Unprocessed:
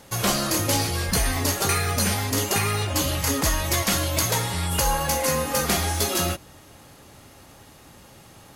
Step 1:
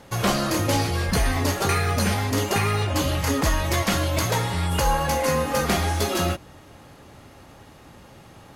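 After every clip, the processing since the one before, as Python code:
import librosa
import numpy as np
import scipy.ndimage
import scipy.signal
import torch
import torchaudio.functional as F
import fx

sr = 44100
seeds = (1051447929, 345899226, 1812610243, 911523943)

y = fx.high_shelf(x, sr, hz=4500.0, db=-11.0)
y = y * 10.0 ** (2.5 / 20.0)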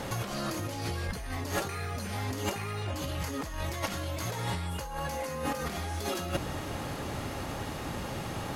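y = fx.over_compress(x, sr, threshold_db=-34.0, ratio=-1.0)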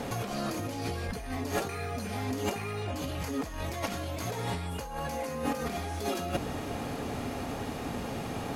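y = fx.small_body(x, sr, hz=(250.0, 440.0, 700.0, 2400.0), ring_ms=40, db=8)
y = y * 10.0 ** (-2.0 / 20.0)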